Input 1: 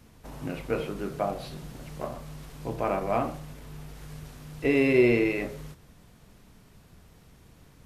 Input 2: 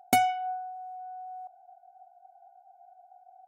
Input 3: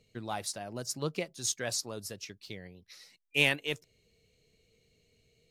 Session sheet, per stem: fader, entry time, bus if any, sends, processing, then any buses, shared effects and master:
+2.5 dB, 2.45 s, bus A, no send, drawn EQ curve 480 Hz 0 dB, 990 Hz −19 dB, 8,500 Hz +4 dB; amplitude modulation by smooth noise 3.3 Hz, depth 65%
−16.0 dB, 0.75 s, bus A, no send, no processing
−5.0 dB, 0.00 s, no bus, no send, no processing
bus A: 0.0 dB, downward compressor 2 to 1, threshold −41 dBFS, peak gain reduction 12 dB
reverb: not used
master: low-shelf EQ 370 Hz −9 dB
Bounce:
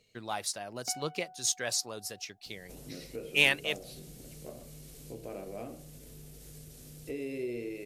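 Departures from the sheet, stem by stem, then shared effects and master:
stem 1: missing amplitude modulation by smooth noise 3.3 Hz, depth 65%
stem 3 −5.0 dB → +2.5 dB

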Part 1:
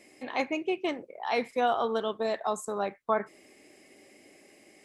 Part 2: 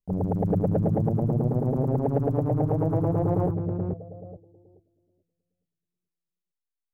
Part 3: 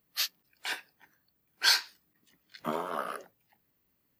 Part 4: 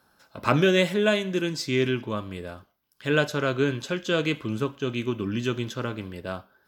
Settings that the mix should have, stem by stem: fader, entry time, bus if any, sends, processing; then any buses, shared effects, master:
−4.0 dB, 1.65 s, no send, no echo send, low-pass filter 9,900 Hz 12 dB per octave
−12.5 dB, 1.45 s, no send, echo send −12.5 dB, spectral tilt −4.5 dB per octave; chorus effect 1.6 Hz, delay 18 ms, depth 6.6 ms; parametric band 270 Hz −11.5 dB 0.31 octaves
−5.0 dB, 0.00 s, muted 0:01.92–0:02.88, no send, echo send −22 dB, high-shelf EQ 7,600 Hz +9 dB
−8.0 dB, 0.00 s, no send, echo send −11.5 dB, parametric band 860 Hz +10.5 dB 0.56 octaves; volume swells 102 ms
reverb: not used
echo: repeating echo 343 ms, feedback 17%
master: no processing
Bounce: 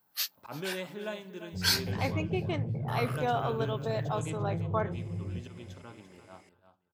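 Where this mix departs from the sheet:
stem 2 −12.5 dB → −18.5 dB
stem 4 −8.0 dB → −18.0 dB
master: extra high-pass filter 72 Hz

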